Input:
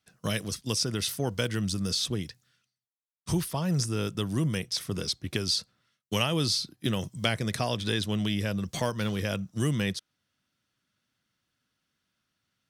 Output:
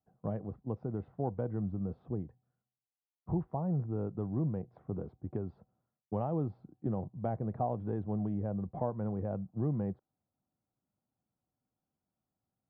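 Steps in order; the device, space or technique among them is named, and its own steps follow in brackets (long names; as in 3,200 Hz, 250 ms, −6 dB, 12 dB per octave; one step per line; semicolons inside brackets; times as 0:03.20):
under water (low-pass filter 910 Hz 24 dB per octave; parametric band 770 Hz +8.5 dB 0.27 octaves)
level −5 dB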